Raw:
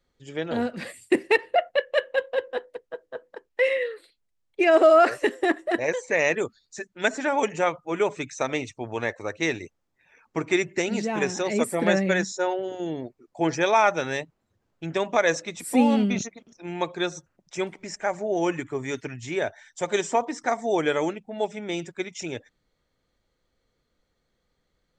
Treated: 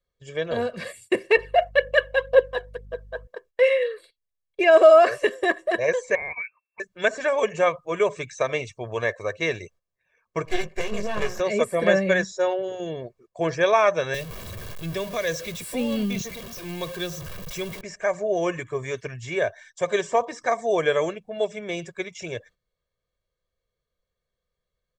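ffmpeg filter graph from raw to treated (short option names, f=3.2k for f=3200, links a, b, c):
-filter_complex "[0:a]asettb=1/sr,asplit=3[a][b][c];[a]atrim=end=1.374[d];[b]atrim=start=1.37:end=3.27,asetpts=PTS-STARTPTS,afade=t=in:d=0.004:c=qsin,afade=t=out:st=1.896:d=0.004:c=qsin,aeval=exprs='val(0)+0.00224*(sin(2*PI*50*n/s)+sin(2*PI*2*50*n/s)/2+sin(2*PI*3*50*n/s)/3+sin(2*PI*4*50*n/s)/4+sin(2*PI*5*50*n/s)/5)':c=same,aphaser=in_gain=1:out_gain=1:delay=1.4:decay=0.54:speed=2:type=triangular[e];[c]atrim=start=3.266[f];[d][e]acrossfade=d=0.004:c1=hsin:c2=qsin[g];[g][f]acrossfade=d=0.004:c1=qsin:c2=hsin,asettb=1/sr,asplit=3[h][i][j];[h]atrim=end=6.154[k];[i]atrim=start=6.15:end=6.8,asetpts=PTS-STARTPTS,afade=t=in:d=0.004:c=qsin,afade=t=out:st=0.646:d=0.004:c=qsin,lowpass=f=2.3k:t=q:w=0.5098,lowpass=f=2.3k:t=q:w=0.6013,lowpass=f=2.3k:t=q:w=0.9,lowpass=f=2.3k:t=q:w=2.563,afreqshift=-2700,acompressor=threshold=-40dB:ratio=2:attack=3.2:release=140:knee=1:detection=peak[l];[j]atrim=start=6.796[m];[k][l]acrossfade=d=0.004:c1=hsin:c2=qsin[n];[n][m]acrossfade=d=0.004:c1=qsin:c2=hsin,asettb=1/sr,asplit=3[o][p][q];[o]atrim=end=10.454[r];[p]atrim=start=10.45:end=11.4,asetpts=PTS-STARTPTS,afade=t=in:d=0.004:c=qsin,afade=t=out:st=0.946:d=0.004:c=qsin,equalizer=f=4.3k:t=o:w=0.24:g=-7,asplit=2[s][t];[t]adelay=19,volume=-5dB[u];[s][u]amix=inputs=2:normalize=0,atrim=end_sample=41895,aeval=exprs='max(val(0),0)':c=same[v];[q]atrim=start=11.396[w];[r][v]acrossfade=d=0.004:c1=hsin:c2=qsin[x];[x][w]acrossfade=d=0.004:c1=qsin:c2=hsin,asettb=1/sr,asplit=3[y][z][aa];[y]atrim=end=14.144[ab];[z]atrim=start=14.14:end=17.81,asetpts=PTS-STARTPTS,afade=t=in:d=0.004:c=qsin,afade=t=out:st=3.666:d=0.004:c=qsin,aeval=exprs='val(0)+0.5*0.0282*sgn(val(0))':c=same,aemphasis=mode=production:type=50fm,acrossover=split=330|3000[ac][ad][ae];[ad]acompressor=threshold=-51dB:ratio=1.5:attack=3.2:release=140:knee=2.83:detection=peak[af];[ac][af][ae]amix=inputs=3:normalize=0[ag];[aa]atrim=start=17.806[ah];[ab][ag]acrossfade=d=0.004:c1=hsin:c2=qsin[ai];[ai][ah]acrossfade=d=0.004:c1=qsin:c2=hsin,acrossover=split=3800[aj][ak];[ak]acompressor=threshold=-42dB:ratio=4:attack=1:release=60[al];[aj][al]amix=inputs=2:normalize=0,agate=range=-12dB:threshold=-52dB:ratio=16:detection=peak,aecho=1:1:1.8:0.73"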